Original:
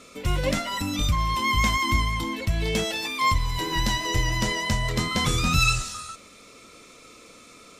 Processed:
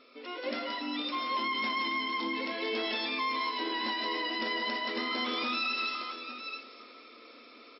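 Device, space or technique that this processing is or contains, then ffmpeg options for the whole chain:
low-bitrate web radio: -af "afftfilt=real='re*between(b*sr/4096,220,5500)':imag='im*between(b*sr/4096,220,5500)':win_size=4096:overlap=0.75,equalizer=frequency=93:width=1.5:gain=-4,aecho=1:1:57|153|176|257|593|853:0.237|0.158|0.422|0.133|0.1|0.188,dynaudnorm=framelen=450:gausssize=5:maxgain=5.5dB,alimiter=limit=-15dB:level=0:latency=1:release=36,volume=-9dB" -ar 24000 -c:a aac -b:a 32k

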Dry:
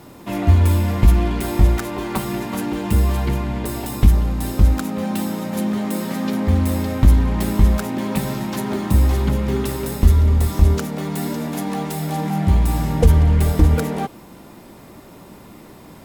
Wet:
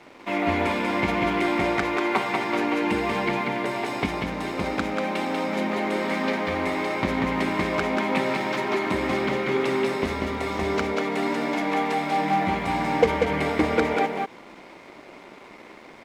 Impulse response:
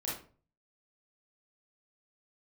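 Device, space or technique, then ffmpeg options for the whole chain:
pocket radio on a weak battery: -af "highpass=350,lowpass=3600,aecho=1:1:190:0.668,aeval=exprs='sgn(val(0))*max(abs(val(0))-0.00316,0)':channel_layout=same,equalizer=frequency=2200:width_type=o:width=0.24:gain=9.5,volume=2.5dB"

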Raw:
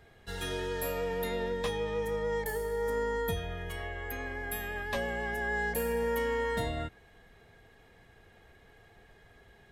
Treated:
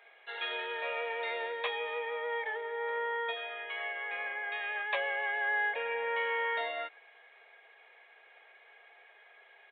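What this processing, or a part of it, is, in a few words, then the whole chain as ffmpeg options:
musical greeting card: -af "lowshelf=frequency=170:gain=-9,aresample=8000,aresample=44100,highpass=frequency=540:width=0.5412,highpass=frequency=540:width=1.3066,equalizer=frequency=2300:width_type=o:width=0.25:gain=10.5,volume=2dB"

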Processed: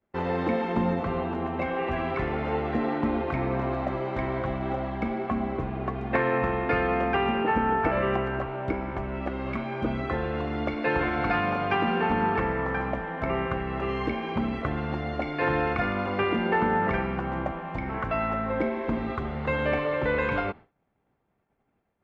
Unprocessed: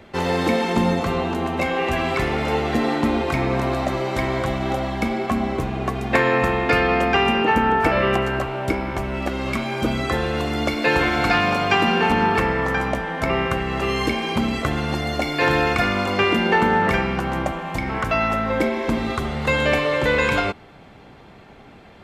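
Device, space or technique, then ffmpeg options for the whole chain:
hearing-loss simulation: -af "lowpass=2000,agate=range=-33dB:threshold=-31dB:ratio=3:detection=peak,volume=-6dB"

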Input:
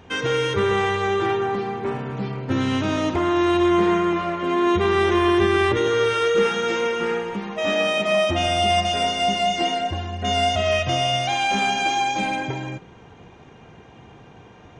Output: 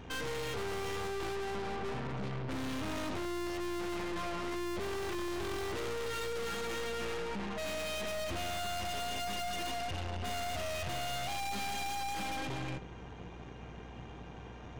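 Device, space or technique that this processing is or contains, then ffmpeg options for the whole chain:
valve amplifier with mains hum: -af "aeval=exprs='(tanh(70.8*val(0)+0.65)-tanh(0.65))/70.8':channel_layout=same,aeval=exprs='val(0)+0.00316*(sin(2*PI*60*n/s)+sin(2*PI*2*60*n/s)/2+sin(2*PI*3*60*n/s)/3+sin(2*PI*4*60*n/s)/4+sin(2*PI*5*60*n/s)/5)':channel_layout=same"

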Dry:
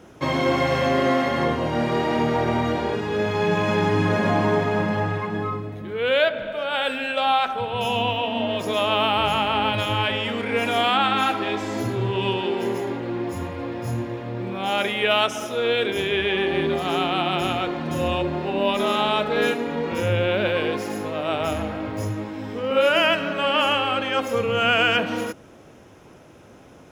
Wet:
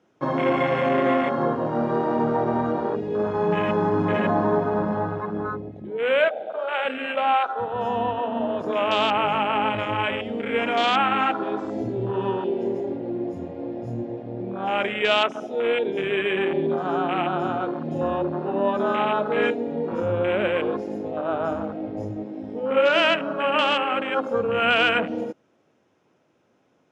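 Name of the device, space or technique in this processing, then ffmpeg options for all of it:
over-cleaned archive recording: -af "highpass=150,lowpass=6700,afwtdn=0.0562"

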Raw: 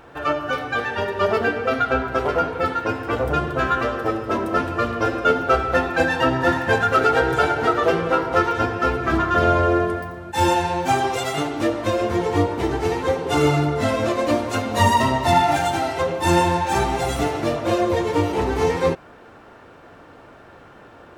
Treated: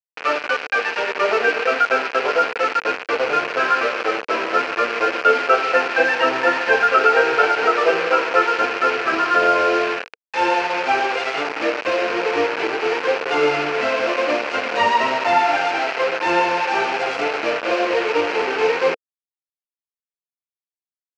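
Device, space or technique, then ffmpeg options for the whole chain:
hand-held game console: -af "acrusher=bits=3:mix=0:aa=0.000001,highpass=420,equalizer=frequency=470:width_type=q:width=4:gain=6,equalizer=frequency=1500:width_type=q:width=4:gain=5,equalizer=frequency=2500:width_type=q:width=4:gain=8,equalizer=frequency=3600:width_type=q:width=4:gain=-8,lowpass=frequency=4600:width=0.5412,lowpass=frequency=4600:width=1.3066"

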